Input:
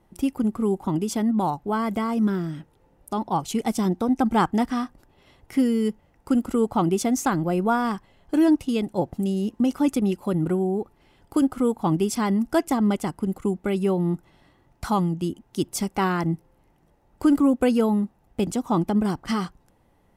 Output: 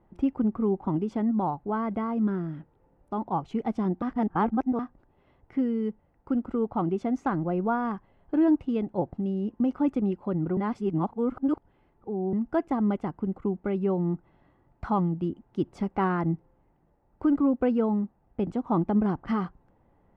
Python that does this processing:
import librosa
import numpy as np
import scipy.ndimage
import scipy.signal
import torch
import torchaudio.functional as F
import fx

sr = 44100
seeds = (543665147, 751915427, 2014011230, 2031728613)

y = fx.edit(x, sr, fx.reverse_span(start_s=4.02, length_s=0.77),
    fx.reverse_span(start_s=10.57, length_s=1.76), tone=tone)
y = scipy.signal.sosfilt(scipy.signal.butter(2, 1600.0, 'lowpass', fs=sr, output='sos'), y)
y = fx.rider(y, sr, range_db=10, speed_s=2.0)
y = F.gain(torch.from_numpy(y), -4.0).numpy()